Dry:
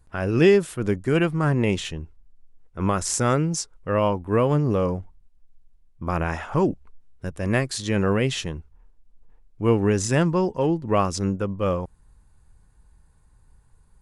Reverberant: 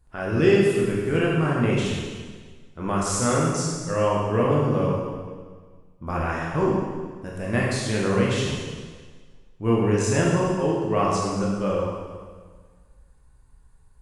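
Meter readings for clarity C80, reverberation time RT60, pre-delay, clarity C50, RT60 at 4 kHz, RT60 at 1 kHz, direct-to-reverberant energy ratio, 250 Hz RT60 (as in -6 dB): 1.5 dB, 1.6 s, 8 ms, -1.0 dB, 1.5 s, 1.6 s, -5.0 dB, 1.6 s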